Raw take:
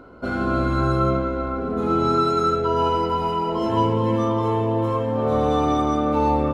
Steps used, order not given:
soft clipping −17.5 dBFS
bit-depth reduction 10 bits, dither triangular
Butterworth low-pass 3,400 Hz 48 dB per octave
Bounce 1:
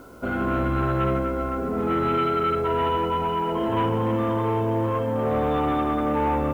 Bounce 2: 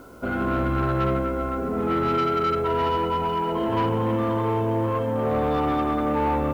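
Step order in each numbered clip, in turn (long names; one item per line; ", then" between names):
soft clipping, then Butterworth low-pass, then bit-depth reduction
Butterworth low-pass, then soft clipping, then bit-depth reduction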